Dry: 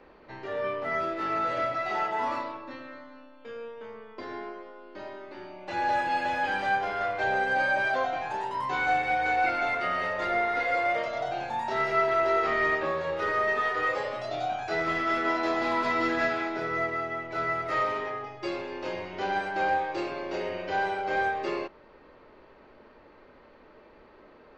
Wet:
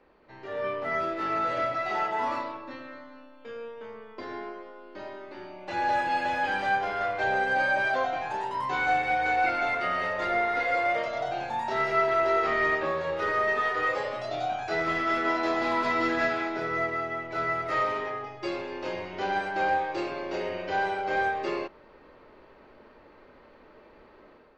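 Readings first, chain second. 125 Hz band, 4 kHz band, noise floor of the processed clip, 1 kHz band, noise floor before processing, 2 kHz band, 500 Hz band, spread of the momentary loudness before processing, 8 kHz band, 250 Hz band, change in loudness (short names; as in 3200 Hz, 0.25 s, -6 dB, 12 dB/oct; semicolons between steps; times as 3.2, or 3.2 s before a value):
+0.5 dB, +0.5 dB, -54 dBFS, +0.5 dB, -55 dBFS, +0.5 dB, +0.5 dB, 16 LU, n/a, +0.5 dB, +0.5 dB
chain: AGC gain up to 8 dB; gain -7.5 dB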